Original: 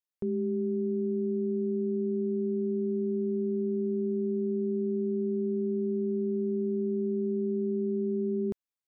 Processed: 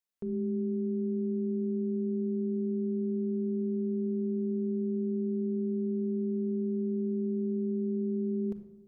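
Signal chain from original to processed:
brickwall limiter −30 dBFS, peak gain reduction 6.5 dB
rectangular room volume 3,100 cubic metres, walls furnished, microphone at 1.6 metres

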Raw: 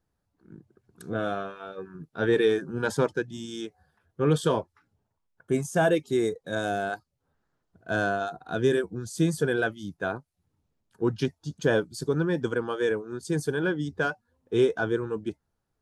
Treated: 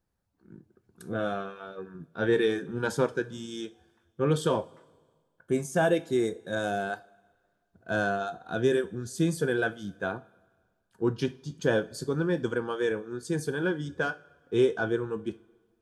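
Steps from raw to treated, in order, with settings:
coupled-rooms reverb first 0.28 s, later 1.6 s, from −20 dB, DRR 10 dB
level −2 dB

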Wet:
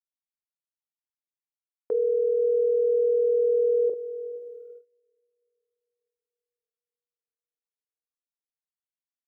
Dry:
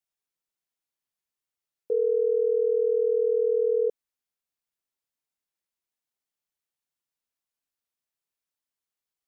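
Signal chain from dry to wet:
double-tracking delay 40 ms −6 dB
feedback delay with all-pass diffusion 477 ms, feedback 42%, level −14 dB
noise gate −42 dBFS, range −24 dB

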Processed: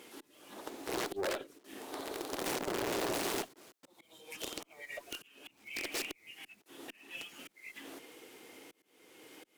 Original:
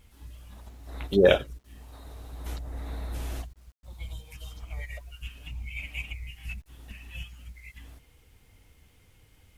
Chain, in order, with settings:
one scale factor per block 5 bits
downward compressor 2 to 1, threshold −44 dBFS, peak gain reduction 17 dB
volume swells 507 ms
wrap-around overflow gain 38.5 dB
four-pole ladder high-pass 290 Hz, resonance 50%
harmonic generator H 5 −18 dB, 8 −30 dB, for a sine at −38 dBFS
highs frequency-modulated by the lows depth 0.42 ms
level +15 dB

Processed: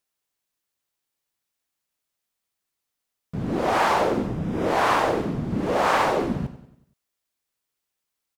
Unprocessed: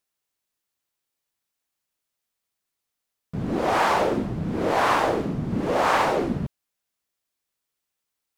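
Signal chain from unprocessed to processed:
0:04.26–0:04.66: Butterworth band-reject 4,300 Hz, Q 7.5
on a send: repeating echo 94 ms, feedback 49%, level −14.5 dB

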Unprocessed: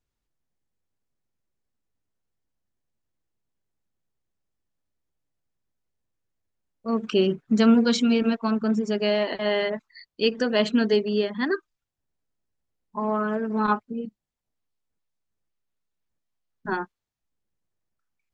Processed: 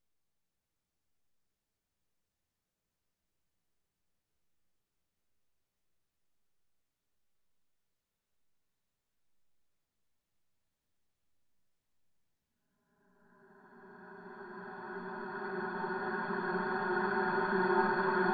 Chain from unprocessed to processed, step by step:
extreme stretch with random phases 12×, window 1.00 s, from 0:15.14
feedback delay with all-pass diffusion 600 ms, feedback 75%, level −6.5 dB

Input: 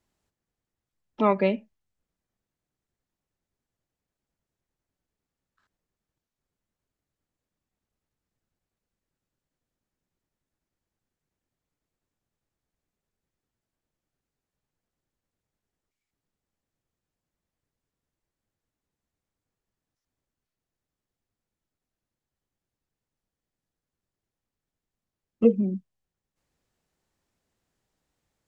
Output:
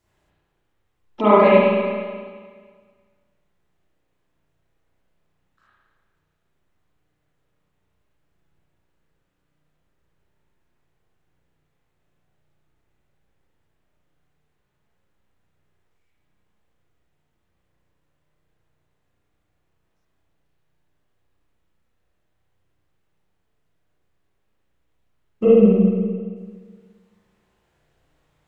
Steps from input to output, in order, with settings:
parametric band 240 Hz −6 dB 0.39 octaves
in parallel at +3 dB: brickwall limiter −18 dBFS, peak gain reduction 9 dB
on the sum: convolution reverb RT60 1.7 s, pre-delay 33 ms, DRR −9.5 dB
level −3.5 dB

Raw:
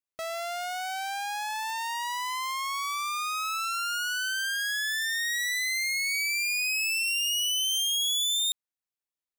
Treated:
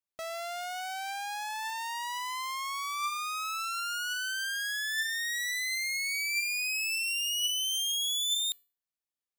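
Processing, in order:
tuned comb filter 590 Hz, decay 0.36 s, mix 60%
level +4 dB

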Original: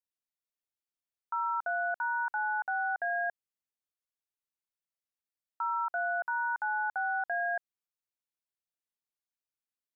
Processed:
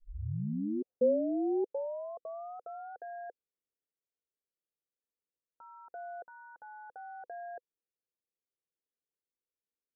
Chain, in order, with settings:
turntable start at the beginning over 2.98 s
thirty-one-band graphic EQ 500 Hz +7 dB, 1,000 Hz −6 dB, 1,600 Hz +5 dB
low-pass filter sweep 1,200 Hz → 420 Hz, 0:00.33–0:01.32
level −3.5 dB

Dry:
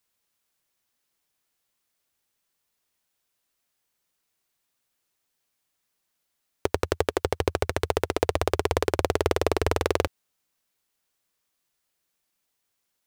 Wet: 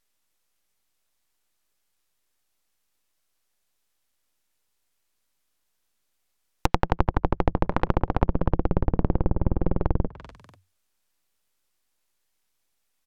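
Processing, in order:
full-wave rectification
echo with shifted repeats 245 ms, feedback 38%, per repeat +46 Hz, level −24 dB
treble cut that deepens with the level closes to 350 Hz, closed at −20.5 dBFS
level +4.5 dB

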